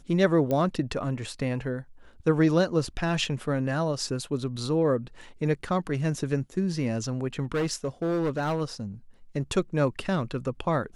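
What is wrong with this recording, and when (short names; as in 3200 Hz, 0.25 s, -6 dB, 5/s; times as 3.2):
0.51 pop -16 dBFS
7.43–8.62 clipped -23 dBFS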